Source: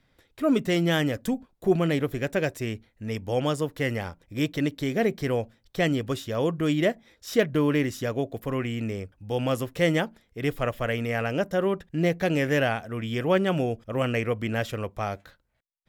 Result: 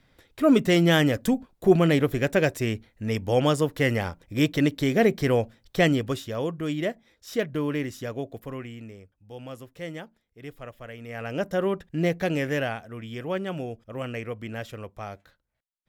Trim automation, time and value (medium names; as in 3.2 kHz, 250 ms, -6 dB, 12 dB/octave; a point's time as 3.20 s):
5.81 s +4 dB
6.54 s -4.5 dB
8.35 s -4.5 dB
8.99 s -13.5 dB
10.97 s -13.5 dB
11.45 s -0.5 dB
12.17 s -0.5 dB
13.07 s -7 dB